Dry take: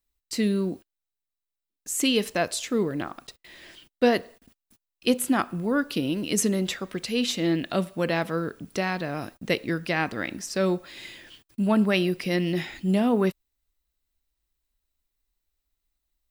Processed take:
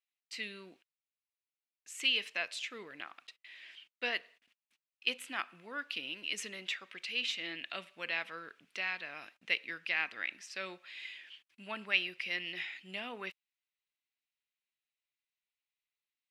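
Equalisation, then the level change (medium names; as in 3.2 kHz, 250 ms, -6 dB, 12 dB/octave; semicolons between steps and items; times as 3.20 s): band-pass filter 2.5 kHz, Q 2.4; 0.0 dB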